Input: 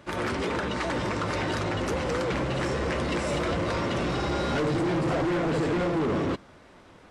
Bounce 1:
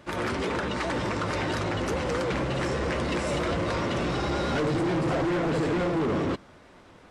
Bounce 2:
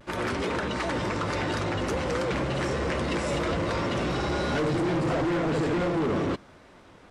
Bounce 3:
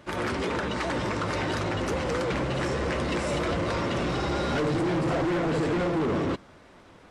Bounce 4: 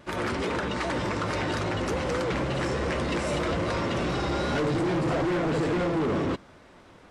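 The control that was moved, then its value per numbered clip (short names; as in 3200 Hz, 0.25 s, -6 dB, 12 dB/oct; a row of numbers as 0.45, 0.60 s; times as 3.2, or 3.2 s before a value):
vibrato, rate: 9.2, 0.51, 14, 2.5 Hz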